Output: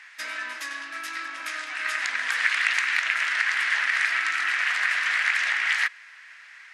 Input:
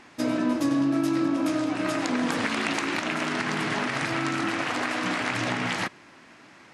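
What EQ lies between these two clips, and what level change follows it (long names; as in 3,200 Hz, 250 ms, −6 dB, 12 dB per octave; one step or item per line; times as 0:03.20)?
high-pass with resonance 1,800 Hz, resonance Q 3.2
0.0 dB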